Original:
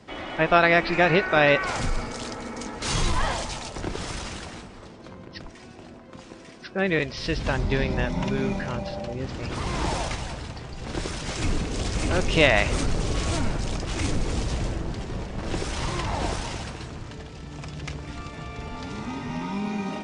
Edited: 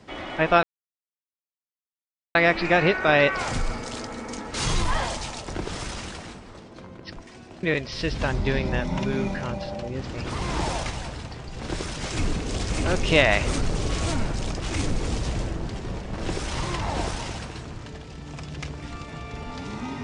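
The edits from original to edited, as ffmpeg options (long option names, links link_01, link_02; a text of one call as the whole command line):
ffmpeg -i in.wav -filter_complex "[0:a]asplit=3[link_01][link_02][link_03];[link_01]atrim=end=0.63,asetpts=PTS-STARTPTS,afade=type=out:start_time=0.626:duration=0.004:curve=hsin,apad=pad_dur=1.72[link_04];[link_02]atrim=start=0.63:end=5.912,asetpts=PTS-STARTPTS,afade=type=in:duration=0.004:curve=hsin[link_05];[link_03]atrim=start=6.878[link_06];[link_04][link_05]concat=n=2:v=0:a=1[link_07];[link_07][link_06]acrossfade=duration=0.004:curve1=hsin:curve2=hsin" out.wav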